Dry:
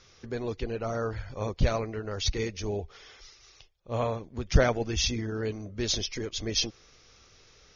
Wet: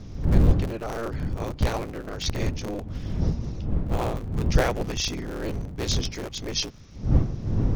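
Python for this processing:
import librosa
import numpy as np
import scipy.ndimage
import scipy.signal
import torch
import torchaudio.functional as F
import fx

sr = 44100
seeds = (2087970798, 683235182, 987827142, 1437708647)

y = fx.cycle_switch(x, sr, every=3, mode='inverted')
y = fx.dmg_wind(y, sr, seeds[0], corner_hz=130.0, level_db=-26.0)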